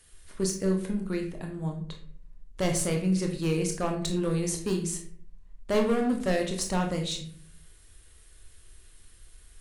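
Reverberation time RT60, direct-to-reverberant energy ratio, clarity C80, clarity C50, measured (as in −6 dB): 0.55 s, 2.0 dB, 11.5 dB, 7.5 dB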